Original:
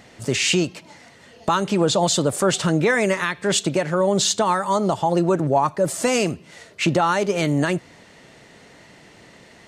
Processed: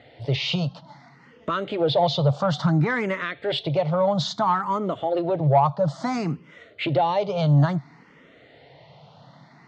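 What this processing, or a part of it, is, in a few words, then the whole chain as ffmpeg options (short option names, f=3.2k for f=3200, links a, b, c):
barber-pole phaser into a guitar amplifier: -filter_complex "[0:a]asplit=2[a][b];[b]afreqshift=0.59[c];[a][c]amix=inputs=2:normalize=1,asoftclip=type=tanh:threshold=-12dB,highpass=100,equalizer=f=140:t=q:w=4:g=9,equalizer=f=210:t=q:w=4:g=-6,equalizer=f=370:t=q:w=4:g=-8,equalizer=f=740:t=q:w=4:g=3,equalizer=f=1.7k:t=q:w=4:g=-7,equalizer=f=2.6k:t=q:w=4:g=-8,lowpass=f=3.9k:w=0.5412,lowpass=f=3.9k:w=1.3066,volume=2dB"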